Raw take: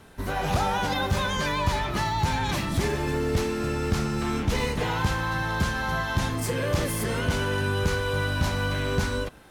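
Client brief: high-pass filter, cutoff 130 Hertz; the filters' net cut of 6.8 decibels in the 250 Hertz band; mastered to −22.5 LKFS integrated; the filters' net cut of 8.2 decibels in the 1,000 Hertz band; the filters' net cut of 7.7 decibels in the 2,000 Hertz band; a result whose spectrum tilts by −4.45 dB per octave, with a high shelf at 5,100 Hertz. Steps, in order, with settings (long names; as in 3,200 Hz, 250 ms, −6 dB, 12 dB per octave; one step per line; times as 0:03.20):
high-pass filter 130 Hz
parametric band 250 Hz −8.5 dB
parametric band 1,000 Hz −8 dB
parametric band 2,000 Hz −6.5 dB
high-shelf EQ 5,100 Hz −3.5 dB
level +10 dB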